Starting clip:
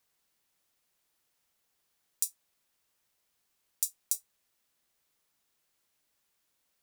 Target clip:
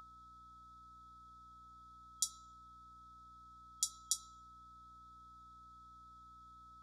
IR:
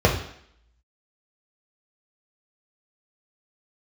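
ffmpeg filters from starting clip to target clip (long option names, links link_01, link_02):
-filter_complex "[0:a]asplit=2[link_01][link_02];[1:a]atrim=start_sample=2205[link_03];[link_02][link_03]afir=irnorm=-1:irlink=0,volume=-23.5dB[link_04];[link_01][link_04]amix=inputs=2:normalize=0,aeval=exprs='val(0)+0.00282*sin(2*PI*1300*n/s)':channel_layout=same,highpass=380,equalizer=frequency=540:width_type=q:width=4:gain=-8,equalizer=frequency=880:width_type=q:width=4:gain=4,equalizer=frequency=1400:width_type=q:width=4:gain=7,equalizer=frequency=3300:width_type=q:width=4:gain=8,equalizer=frequency=8300:width_type=q:width=4:gain=-8,lowpass=frequency=8600:width=0.5412,lowpass=frequency=8600:width=1.3066,aeval=exprs='val(0)+0.000447*(sin(2*PI*60*n/s)+sin(2*PI*2*60*n/s)/2+sin(2*PI*3*60*n/s)/3+sin(2*PI*4*60*n/s)/4+sin(2*PI*5*60*n/s)/5)':channel_layout=same,afftfilt=real='re*(1-between(b*sr/4096,1300,3300))':imag='im*(1-between(b*sr/4096,1300,3300))':win_size=4096:overlap=0.75,volume=1dB"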